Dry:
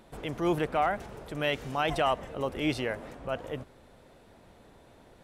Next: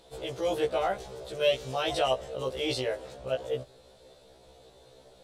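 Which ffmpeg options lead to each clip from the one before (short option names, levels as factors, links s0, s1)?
-af "equalizer=f=250:t=o:w=1:g=-8,equalizer=f=500:t=o:w=1:g=10,equalizer=f=1000:t=o:w=1:g=-3,equalizer=f=2000:t=o:w=1:g=-5,equalizer=f=4000:t=o:w=1:g=11,equalizer=f=8000:t=o:w=1:g=6,afftfilt=real='re*1.73*eq(mod(b,3),0)':imag='im*1.73*eq(mod(b,3),0)':win_size=2048:overlap=0.75"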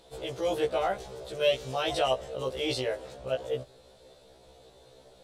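-af anull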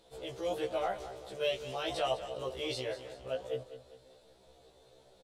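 -af "flanger=delay=8.8:depth=4.5:regen=53:speed=1.4:shape=triangular,aecho=1:1:201|402|603|804:0.224|0.0918|0.0376|0.0154,volume=0.794"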